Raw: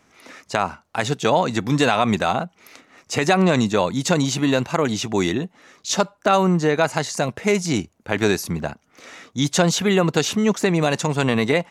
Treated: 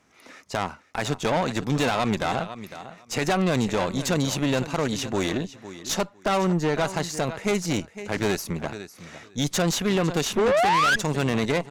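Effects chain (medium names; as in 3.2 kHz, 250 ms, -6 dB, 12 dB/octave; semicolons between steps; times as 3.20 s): feedback delay 504 ms, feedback 17%, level -15 dB; painted sound rise, 10.37–10.96 s, 370–1700 Hz -11 dBFS; valve stage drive 18 dB, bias 0.75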